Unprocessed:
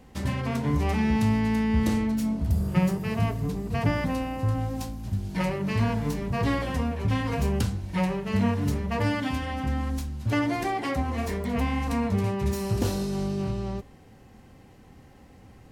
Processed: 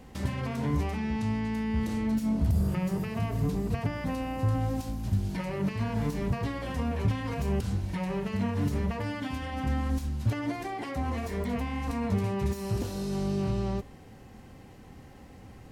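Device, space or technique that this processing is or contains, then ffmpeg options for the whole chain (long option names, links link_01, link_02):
de-esser from a sidechain: -filter_complex "[0:a]asettb=1/sr,asplit=3[link_01][link_02][link_03];[link_01]atrim=end=0.974[link_04];[link_02]atrim=start=0.97:end=1.55,asetpts=PTS-STARTPTS,afade=type=in:duration=0.004:curve=qsin,afade=type=out:start_time=0.576:duration=0.004:curve=qsin,lowpass=9200[link_05];[link_03]atrim=start=1.546[link_06];[link_04][link_05]acrossfade=duration=0.004:curve1=hsin:curve2=qsin[link_07];[link_07][link_06]acrossfade=duration=0.004:curve1=qsin:curve2=hsin,asplit=2[link_08][link_09];[link_09]highpass=frequency=4200:poles=1,apad=whole_len=693055[link_10];[link_08][link_10]sidechaincompress=threshold=-47dB:ratio=8:attack=3.6:release=66,volume=2dB"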